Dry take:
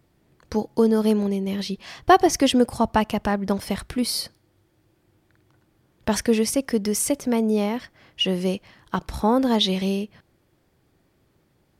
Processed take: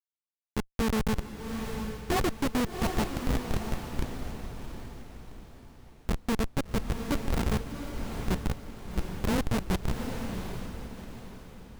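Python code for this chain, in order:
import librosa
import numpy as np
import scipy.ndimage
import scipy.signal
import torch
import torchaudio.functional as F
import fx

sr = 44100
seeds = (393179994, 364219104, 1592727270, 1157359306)

p1 = fx.peak_eq(x, sr, hz=8300.0, db=-6.0, octaves=2.9)
p2 = fx.dispersion(p1, sr, late='highs', ms=121.0, hz=1400.0)
p3 = fx.add_hum(p2, sr, base_hz=60, snr_db=10)
p4 = fx.schmitt(p3, sr, flips_db=-16.0)
p5 = p4 + fx.echo_diffused(p4, sr, ms=742, feedback_pct=41, wet_db=-6.0, dry=0)
y = F.gain(torch.from_numpy(p5), -1.5).numpy()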